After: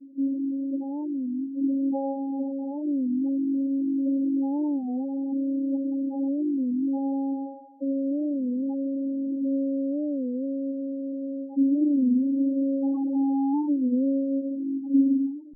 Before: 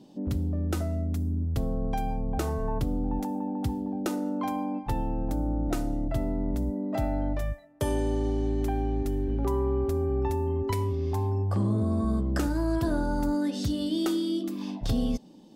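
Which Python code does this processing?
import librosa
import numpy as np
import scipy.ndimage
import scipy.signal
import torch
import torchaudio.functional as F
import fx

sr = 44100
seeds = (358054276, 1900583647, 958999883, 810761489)

y = fx.comb(x, sr, ms=5.3, depth=0.99, at=(1.6, 2.11), fade=0.02)
y = fx.vocoder(y, sr, bands=8, carrier='saw', carrier_hz=273.0)
y = fx.schmitt(y, sr, flips_db=-44.0, at=(12.82, 13.62))
y = scipy.signal.sosfilt(scipy.signal.butter(2, 170.0, 'highpass', fs=sr, output='sos'), y)
y = y + 10.0 ** (-8.5 / 20.0) * np.pad(y, (int(93 * sr / 1000.0), 0))[:len(y)]
y = fx.rev_gated(y, sr, seeds[0], gate_ms=280, shape='rising', drr_db=10.5)
y = fx.spec_topn(y, sr, count=4)
y = fx.peak_eq(y, sr, hz=280.0, db=7.5, octaves=0.32)
y = fx.record_warp(y, sr, rpm=33.33, depth_cents=160.0)
y = y * librosa.db_to_amplitude(1.0)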